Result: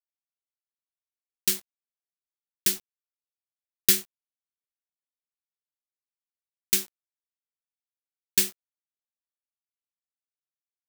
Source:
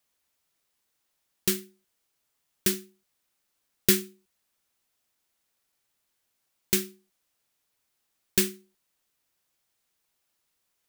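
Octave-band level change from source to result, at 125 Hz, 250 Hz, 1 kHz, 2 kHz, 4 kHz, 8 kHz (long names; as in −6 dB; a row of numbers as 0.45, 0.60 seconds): −9.0, −9.0, −3.5, −1.0, +2.0, +3.0 decibels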